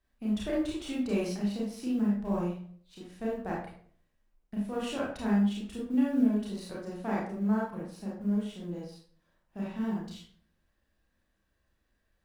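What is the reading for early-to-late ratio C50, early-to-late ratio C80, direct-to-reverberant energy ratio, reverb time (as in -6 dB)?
2.0 dB, 7.0 dB, -6.0 dB, 0.50 s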